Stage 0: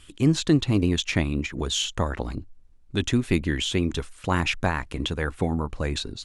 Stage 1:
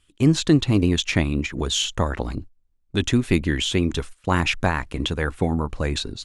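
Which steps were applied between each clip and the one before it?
noise gate −37 dBFS, range −16 dB
level +3 dB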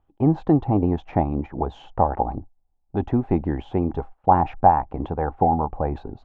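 low-pass with resonance 800 Hz, resonance Q 9.8
level −2.5 dB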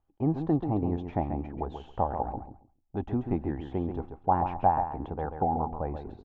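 repeating echo 136 ms, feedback 19%, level −8 dB
level −8.5 dB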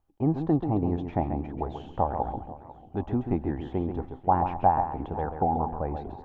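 feedback echo with a swinging delay time 496 ms, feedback 52%, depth 120 cents, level −18 dB
level +2 dB

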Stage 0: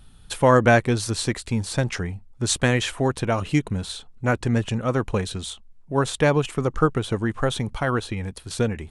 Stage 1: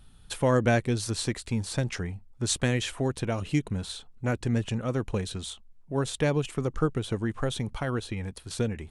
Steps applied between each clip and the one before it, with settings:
dynamic equaliser 1,100 Hz, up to −7 dB, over −33 dBFS, Q 0.78
level −4.5 dB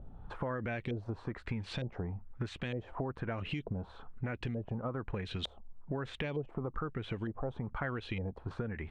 brickwall limiter −20.5 dBFS, peak gain reduction 10.5 dB
downward compressor 12 to 1, threshold −39 dBFS, peak gain reduction 14.5 dB
auto-filter low-pass saw up 1.1 Hz 560–3,400 Hz
level +5 dB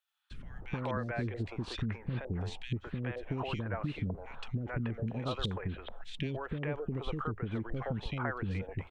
reversed playback
upward compression, threshold −41 dBFS
reversed playback
three-band delay without the direct sound highs, lows, mids 310/430 ms, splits 420/2,300 Hz
level +3 dB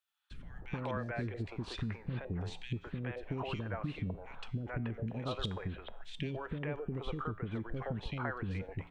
tuned comb filter 57 Hz, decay 0.73 s, harmonics odd, mix 50%
level +3 dB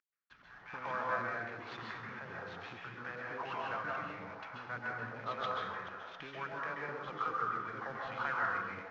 variable-slope delta modulation 32 kbit/s
resonant band-pass 1,300 Hz, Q 1.9
dense smooth reverb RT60 1.1 s, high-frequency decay 0.5×, pre-delay 120 ms, DRR −3 dB
level +5.5 dB

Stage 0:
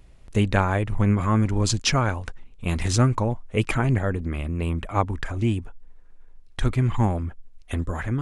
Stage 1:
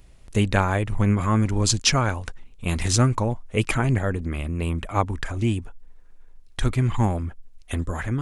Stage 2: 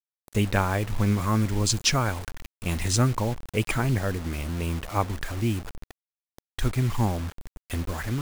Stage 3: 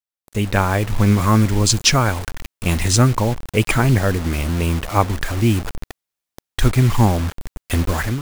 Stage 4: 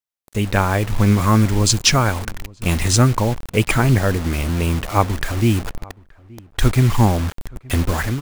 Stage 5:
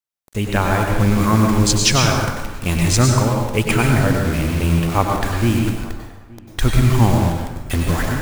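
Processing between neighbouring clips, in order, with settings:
high-shelf EQ 4,100 Hz +6.5 dB
bit reduction 6 bits; level −3 dB
automatic gain control gain up to 12.5 dB
slap from a distant wall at 150 metres, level −24 dB
dense smooth reverb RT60 1.1 s, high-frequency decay 0.75×, pre-delay 85 ms, DRR 1 dB; level −1.5 dB

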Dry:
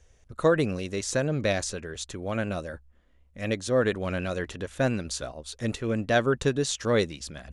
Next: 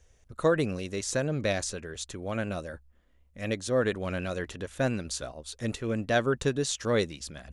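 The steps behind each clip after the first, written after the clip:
high-shelf EQ 9,200 Hz +4.5 dB
level −2.5 dB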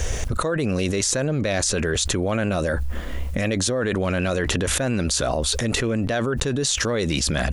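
envelope flattener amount 100%
level −2.5 dB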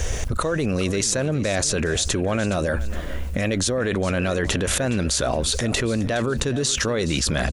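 repeating echo 417 ms, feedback 31%, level −15.5 dB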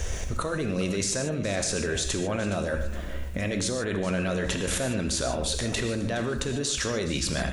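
reverb whose tail is shaped and stops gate 170 ms flat, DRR 5.5 dB
level −6.5 dB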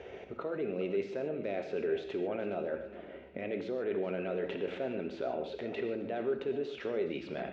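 loudspeaker in its box 260–2,600 Hz, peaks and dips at 400 Hz +9 dB, 730 Hz +3 dB, 1,100 Hz −9 dB, 1,700 Hz −8 dB
level −7 dB

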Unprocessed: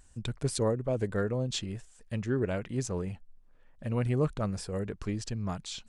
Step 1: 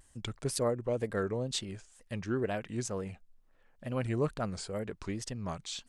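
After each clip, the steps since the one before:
low-shelf EQ 220 Hz −7.5 dB
tape wow and flutter 150 cents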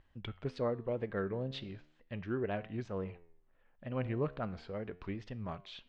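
low-pass filter 3,400 Hz 24 dB per octave
flanger 0.37 Hz, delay 9 ms, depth 6.9 ms, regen +88%
level +1 dB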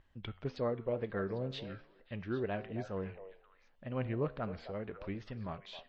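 echo through a band-pass that steps 266 ms, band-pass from 650 Hz, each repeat 1.4 octaves, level −8 dB
MP3 32 kbit/s 24,000 Hz

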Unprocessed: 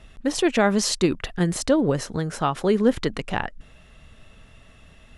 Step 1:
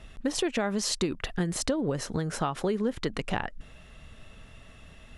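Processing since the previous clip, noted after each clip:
downward compressor 6 to 1, threshold −25 dBFS, peak gain reduction 12 dB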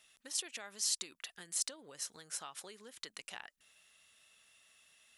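first difference
level −1.5 dB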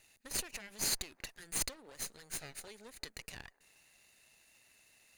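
lower of the sound and its delayed copy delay 0.45 ms
delay with a band-pass on its return 177 ms, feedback 59%, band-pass 750 Hz, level −23 dB
level +2 dB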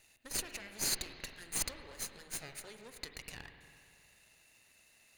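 spring reverb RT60 2.5 s, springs 45/59 ms, chirp 60 ms, DRR 6.5 dB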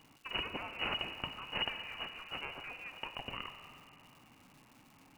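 voice inversion scrambler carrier 2,900 Hz
surface crackle 360 per second −57 dBFS
level +6 dB

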